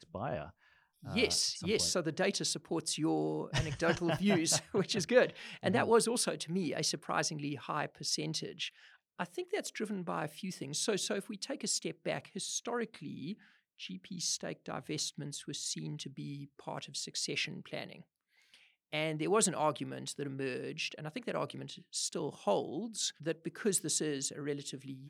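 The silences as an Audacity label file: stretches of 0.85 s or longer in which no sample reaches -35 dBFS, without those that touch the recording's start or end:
17.930000	18.930000	silence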